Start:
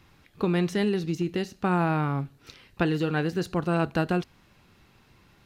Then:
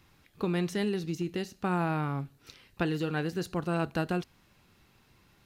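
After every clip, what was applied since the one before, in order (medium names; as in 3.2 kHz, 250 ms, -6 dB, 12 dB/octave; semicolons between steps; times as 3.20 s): treble shelf 6.2 kHz +6.5 dB; trim -5 dB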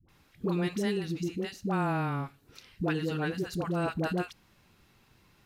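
phase dispersion highs, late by 88 ms, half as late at 550 Hz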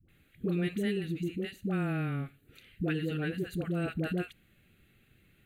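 static phaser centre 2.3 kHz, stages 4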